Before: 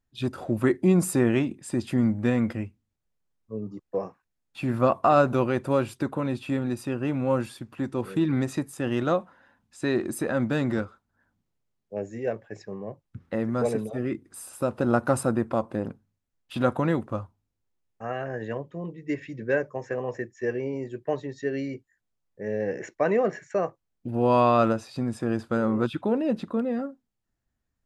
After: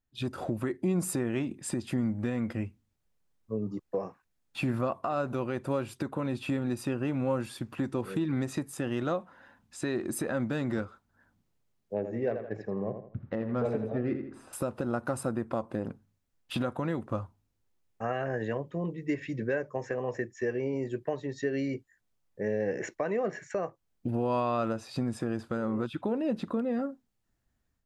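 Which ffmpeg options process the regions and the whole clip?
-filter_complex "[0:a]asettb=1/sr,asplit=3[a][b][c];[a]atrim=end=11.944[d];[b]atrim=start=11.94:end=14.53,asetpts=PTS-STARTPTS,afade=t=in:d=0.004:c=qsin,afade=t=out:st=2.586:d=0.004:c=qsin,adynamicsmooth=sensitivity=2:basefreq=2.1k,asplit=2[e][f];[f]adelay=82,lowpass=f=4.3k:p=1,volume=-9dB,asplit=2[g][h];[h]adelay=82,lowpass=f=4.3k:p=1,volume=0.34,asplit=2[i][j];[j]adelay=82,lowpass=f=4.3k:p=1,volume=0.34,asplit=2[k][l];[l]adelay=82,lowpass=f=4.3k:p=1,volume=0.34[m];[e][g][i][k][m]amix=inputs=5:normalize=0,atrim=end_sample=114219[n];[c]atrim=start=14.526[o];[d][n]acrossfade=d=0.004:c1=hsin:c2=qsin[p];[p][o]acrossfade=d=0.004:c1=qsin:c2=hsin,acompressor=threshold=-32dB:ratio=2.5,alimiter=limit=-23dB:level=0:latency=1:release=419,dynaudnorm=f=150:g=3:m=9dB,volume=-5.5dB"

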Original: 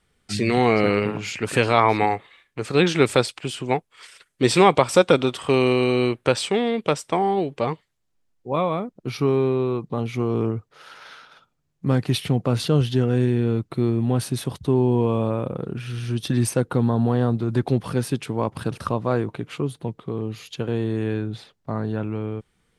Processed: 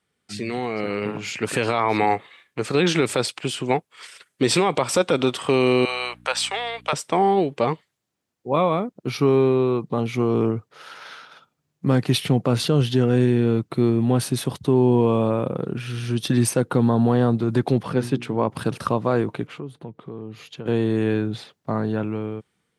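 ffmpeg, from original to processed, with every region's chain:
-filter_complex "[0:a]asettb=1/sr,asplit=3[a][b][c];[a]atrim=end=5.854[d];[b]atrim=start=5.85:end=6.93,asetpts=PTS-STARTPTS,afade=t=in:d=0.004:c=qsin,afade=t=out:st=1.076:d=0.004:c=qsin,highpass=f=700:w=0.5412,highpass=f=700:w=1.3066,aeval=exprs='val(0)+0.00447*(sin(2*PI*60*n/s)+sin(2*PI*2*60*n/s)/2+sin(2*PI*3*60*n/s)/3+sin(2*PI*4*60*n/s)/4+sin(2*PI*5*60*n/s)/5)':c=same[e];[c]atrim=start=6.926[f];[d][e]acrossfade=d=0.004:c1=hsin:c2=qsin[g];[g][f]acrossfade=d=0.004:c1=qsin:c2=hsin,asettb=1/sr,asplit=3[h][i][j];[h]atrim=end=17.834[k];[i]atrim=start=17.83:end=18.5,asetpts=PTS-STARTPTS,afade=t=in:d=0.004:c=qsin,afade=t=out:st=0.666:d=0.004:c=qsin,lowpass=f=2.9k:p=1,bandreject=f=60:t=h:w=6,bandreject=f=120:t=h:w=6,bandreject=f=180:t=h:w=6,bandreject=f=240:t=h:w=6,bandreject=f=300:t=h:w=6,bandreject=f=360:t=h:w=6[l];[j]atrim=start=18.496[m];[k][l]acrossfade=d=0.004:c1=hsin:c2=qsin[n];[n][m]acrossfade=d=0.004:c1=qsin:c2=hsin,asettb=1/sr,asplit=3[o][p][q];[o]atrim=end=19.474[r];[p]atrim=start=19.47:end=20.66,asetpts=PTS-STARTPTS,afade=t=in:d=0.004:c=qsin,afade=t=out:st=1.186:d=0.004:c=qsin,highshelf=f=3.5k:g=-11,acompressor=threshold=-40dB:ratio=2:attack=3.2:release=140:knee=1:detection=peak,agate=range=-33dB:threshold=-57dB:ratio=3:release=100:detection=peak[s];[q]atrim=start=20.656[t];[r][s]acrossfade=d=0.004:c1=hsin:c2=qsin[u];[u][t]acrossfade=d=0.004:c1=qsin:c2=hsin,highpass=120,alimiter=limit=-11.5dB:level=0:latency=1:release=63,dynaudnorm=f=500:g=5:m=11.5dB,volume=-6dB"

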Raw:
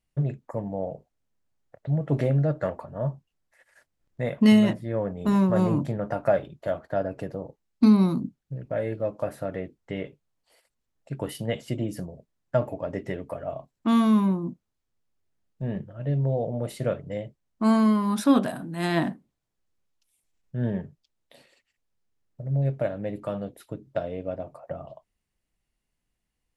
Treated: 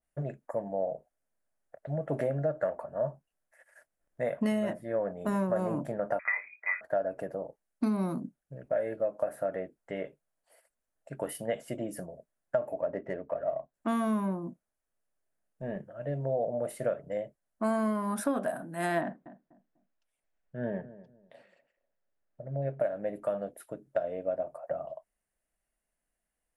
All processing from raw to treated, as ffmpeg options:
-filter_complex "[0:a]asettb=1/sr,asplit=3[a][b][c];[a]atrim=end=6.194[d];[b]atrim=start=6.19:end=6.81,asetpts=PTS-STARTPTS,afade=t=in:d=0.004:c=qsin,afade=t=out:st=0.616:d=0.004:c=qsin,asplit=2[e][f];[f]adelay=25,volume=-8.5dB[g];[e][g]amix=inputs=2:normalize=0,atrim=end_sample=27342,lowpass=f=2.2k:t=q:w=0.5098,lowpass=f=2.2k:t=q:w=0.6013,lowpass=f=2.2k:t=q:w=0.9,lowpass=f=2.2k:t=q:w=2.563,afreqshift=-2600[h];[c]atrim=start=6.806[i];[d][h]acrossfade=d=0.004:c1=hsin:c2=qsin[j];[j][i]acrossfade=d=0.004:c1=qsin:c2=hsin,asettb=1/sr,asplit=3[k][l][m];[k]atrim=end=12.814[n];[l]atrim=start=12.81:end=13.74,asetpts=PTS-STARTPTS,afade=t=in:d=0.004:c=qsin,afade=t=out:st=0.926:d=0.004:c=qsin,highshelf=f=4.7k:g=-11,bandreject=f=760:w=19,adynamicsmooth=sensitivity=7.5:basefreq=2.4k[o];[m]atrim=start=13.736[p];[n][o]acrossfade=d=0.004:c1=hsin:c2=qsin[q];[q][p]acrossfade=d=0.004:c1=qsin:c2=hsin,asettb=1/sr,asplit=3[r][s][t];[r]atrim=end=19.014[u];[s]atrim=start=19.01:end=22.8,asetpts=PTS-STARTPTS,afade=t=in:d=0.004:c=qsin,afade=t=out:st=3.786:d=0.004:c=qsin,lowpass=3.8k,asplit=2[v][w];[w]adelay=247,lowpass=f=980:p=1,volume=-16dB,asplit=2[x][y];[y]adelay=247,lowpass=f=980:p=1,volume=0.27,asplit=2[z][aa];[aa]adelay=247,lowpass=f=980:p=1,volume=0.27[ab];[v][x][z][ab]amix=inputs=4:normalize=0,atrim=end_sample=167139[ac];[t]atrim=start=22.796[ad];[u][ac]acrossfade=d=0.004:c1=hsin:c2=qsin[ae];[ae][ad]acrossfade=d=0.004:c1=qsin:c2=hsin,equalizer=f=100:t=o:w=0.67:g=-12,equalizer=f=630:t=o:w=0.67:g=11,equalizer=f=1.6k:t=o:w=0.67:g=8,equalizer=f=4k:t=o:w=0.67:g=-6,equalizer=f=10k:t=o:w=0.67:g=11,acompressor=threshold=-18dB:ratio=6,adynamicequalizer=threshold=0.0141:dfrequency=1800:dqfactor=0.7:tfrequency=1800:tqfactor=0.7:attack=5:release=100:ratio=0.375:range=2:mode=cutabove:tftype=highshelf,volume=-7dB"

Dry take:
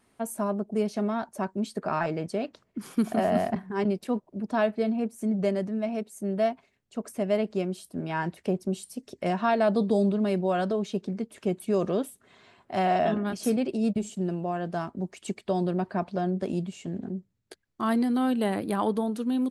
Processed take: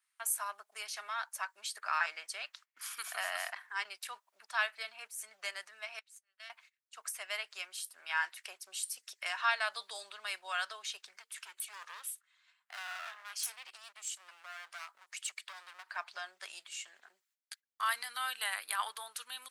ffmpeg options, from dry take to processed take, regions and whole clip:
-filter_complex "[0:a]asettb=1/sr,asplit=3[a][b][c];[a]atrim=end=5.994[d];[b]atrim=start=5.99:end=6.5,asetpts=PTS-STARTPTS,afade=t=in:d=0.004:c=qsin,afade=t=out:st=0.506:d=0.004:c=qsin,aderivative,adynamicsmooth=sensitivity=6:basefreq=3.4k[e];[c]atrim=start=6.496[f];[d][e]acrossfade=d=0.004:c1=hsin:c2=qsin[g];[g][f]acrossfade=d=0.004:c1=qsin:c2=hsin,asettb=1/sr,asplit=3[h][i][j];[h]atrim=end=11.184[k];[i]atrim=start=11.18:end=15.96,asetpts=PTS-STARTPTS,afade=t=in:d=0.004:c=qsin,afade=t=out:st=4.776:d=0.004:c=qsin,aeval=exprs='clip(val(0),-1,0.0178)':c=same,acompressor=threshold=-38dB:ratio=2:attack=3.2:release=140:knee=1:detection=peak[l];[j]atrim=start=15.956[m];[k][l]acrossfade=d=0.004:c1=hsin:c2=qsin[n];[n][m]acrossfade=d=0.004:c1=qsin:c2=hsin,agate=range=-16dB:threshold=-53dB:ratio=16:detection=peak,highpass=f=1.3k:w=0.5412,highpass=f=1.3k:w=1.3066,highshelf=f=7.7k:g=4.5,volume=3.5dB"

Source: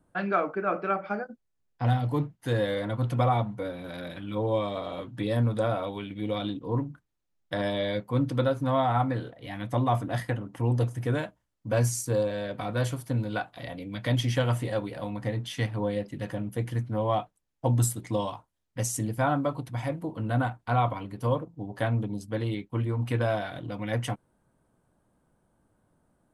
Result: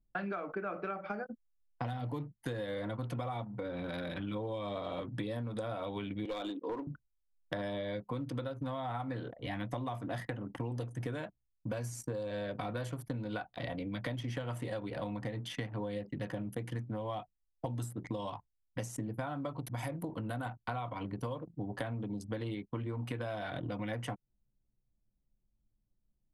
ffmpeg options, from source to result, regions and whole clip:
-filter_complex "[0:a]asettb=1/sr,asplit=3[a][b][c];[a]atrim=end=3.444[d];[b]atrim=start=3.44:end=4.2,asetpts=PTS-STARTPTS,afade=t=in:d=0.004:c=qsin,afade=t=out:st=0.756:d=0.004:c=qsin,highpass=43,bandreject=f=660:w=17,acompressor=threshold=-35dB:ratio=4:attack=3.2:release=140:knee=1:detection=peak[e];[c]atrim=start=4.196[f];[d][e]acrossfade=d=0.004:c1=hsin:c2=qsin[g];[g][f]acrossfade=d=0.004:c1=qsin:c2=hsin,asettb=1/sr,asplit=3[h][i][j];[h]atrim=end=6.254[k];[i]atrim=start=6.25:end=6.87,asetpts=PTS-STARTPTS,afade=t=in:d=0.004:c=qsin,afade=t=out:st=0.616:d=0.004:c=qsin,highpass=f=300:w=0.5412,highpass=f=300:w=1.3066,equalizer=f=5.6k:w=0.77:g=5,aeval=exprs='clip(val(0),-1,0.0335)':c=same[l];[j]atrim=start=6.866[m];[k][l]acrossfade=d=0.004:c1=hsin:c2=qsin[n];[n][m]acrossfade=d=0.004:c1=qsin:c2=hsin,asettb=1/sr,asplit=3[o][p][q];[o]atrim=end=19.654[r];[p]atrim=start=19.65:end=20.46,asetpts=PTS-STARTPTS,afade=t=in:d=0.004:c=qsin,afade=t=out:st=0.806:d=0.004:c=qsin,aemphasis=mode=production:type=50fm,acompressor=threshold=-31dB:ratio=2:attack=3.2:release=140:knee=1:detection=peak[s];[q]atrim=start=20.456[t];[r][s]acrossfade=d=0.004:c1=hsin:c2=qsin[u];[u][t]acrossfade=d=0.004:c1=qsin:c2=hsin,acrossover=split=130|2200[v][w][x];[v]acompressor=threshold=-43dB:ratio=4[y];[w]acompressor=threshold=-30dB:ratio=4[z];[x]acompressor=threshold=-46dB:ratio=4[aa];[y][z][aa]amix=inputs=3:normalize=0,anlmdn=0.0251,acompressor=threshold=-38dB:ratio=6,volume=3dB"

